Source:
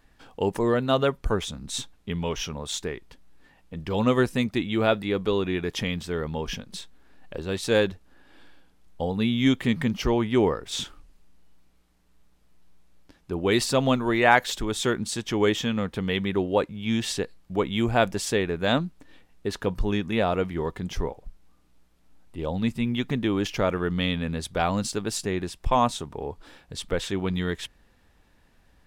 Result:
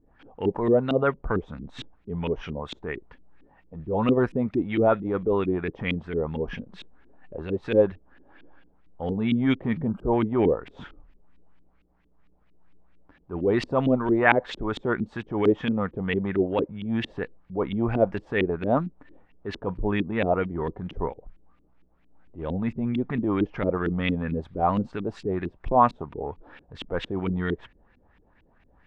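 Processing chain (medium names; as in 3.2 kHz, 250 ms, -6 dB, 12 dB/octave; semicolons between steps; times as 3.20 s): transient shaper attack -7 dB, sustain -1 dB; time-frequency box 9.87–10.12 s, 1.6–7.4 kHz -30 dB; LFO low-pass saw up 4.4 Hz 270–2900 Hz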